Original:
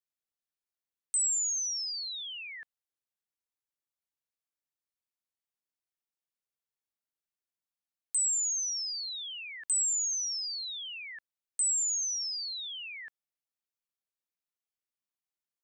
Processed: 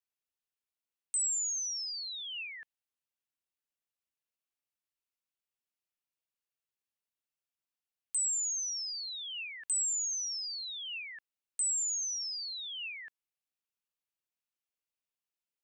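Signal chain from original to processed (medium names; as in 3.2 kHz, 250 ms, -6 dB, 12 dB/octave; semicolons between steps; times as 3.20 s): peaking EQ 2.7 kHz +5.5 dB 0.37 oct; trim -3 dB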